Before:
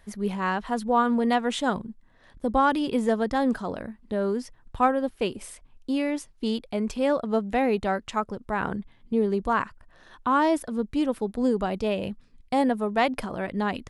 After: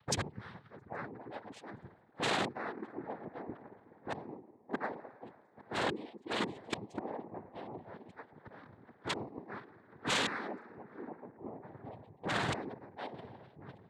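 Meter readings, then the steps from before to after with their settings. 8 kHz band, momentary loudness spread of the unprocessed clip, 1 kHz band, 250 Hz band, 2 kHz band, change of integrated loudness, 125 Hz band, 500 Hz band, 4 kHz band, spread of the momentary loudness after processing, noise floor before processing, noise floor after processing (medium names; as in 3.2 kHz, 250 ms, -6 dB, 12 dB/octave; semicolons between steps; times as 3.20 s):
-2.0 dB, 10 LU, -15.0 dB, -18.0 dB, -8.0 dB, -13.5 dB, -8.0 dB, -16.0 dB, -3.0 dB, 19 LU, -57 dBFS, -64 dBFS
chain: treble shelf 4 kHz -3 dB; spring tank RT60 3.7 s, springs 53 ms, chirp 75 ms, DRR 2.5 dB; reverb removal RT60 0.52 s; spectral gate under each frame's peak -20 dB strong; inverted gate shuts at -25 dBFS, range -29 dB; on a send: filtered feedback delay 822 ms, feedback 68%, low-pass 2 kHz, level -20 dB; on the sum: wavefolder -40 dBFS; noise-vocoded speech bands 6; three bands expanded up and down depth 100%; trim +9.5 dB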